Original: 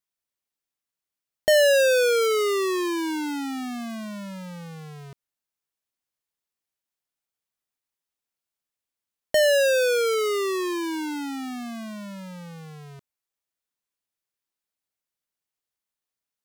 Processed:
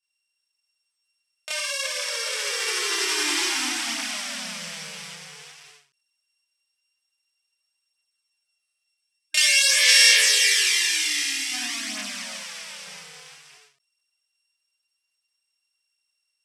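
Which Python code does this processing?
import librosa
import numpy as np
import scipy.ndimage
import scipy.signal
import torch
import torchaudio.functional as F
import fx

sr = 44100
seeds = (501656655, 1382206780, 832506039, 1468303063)

y = np.r_[np.sort(x[:len(x) // 16 * 16].reshape(-1, 16), axis=1).ravel(), x[len(x) // 16 * 16:]]
y = fx.spec_box(y, sr, start_s=8.8, length_s=2.71, low_hz=320.0, high_hz=1600.0, gain_db=-15)
y = fx.echo_multitap(y, sr, ms=(82, 355, 550, 760), db=(-6.5, -3.5, -7.5, -8.5))
y = fx.over_compress(y, sr, threshold_db=-24.0, ratio=-1.0)
y = fx.weighting(y, sr, curve='ITU-R 468')
y = fx.chorus_voices(y, sr, voices=2, hz=0.25, base_ms=28, depth_ms=4.3, mix_pct=65)
y = fx.low_shelf(y, sr, hz=340.0, db=-8.5, at=(12.43, 12.87))
y = fx.end_taper(y, sr, db_per_s=140.0)
y = y * librosa.db_to_amplitude(-1.0)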